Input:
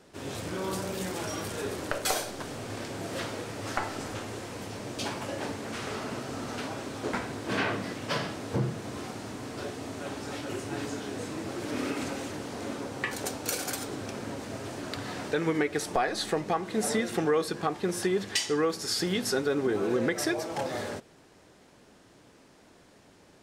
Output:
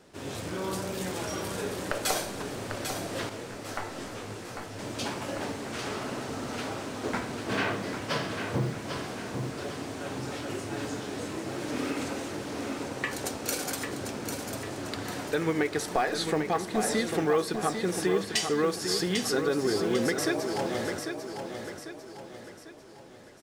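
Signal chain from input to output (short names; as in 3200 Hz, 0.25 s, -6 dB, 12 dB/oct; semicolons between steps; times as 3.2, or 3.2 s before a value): feedback echo 0.797 s, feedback 44%, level -7 dB; modulation noise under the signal 35 dB; 3.29–4.79 detuned doubles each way 34 cents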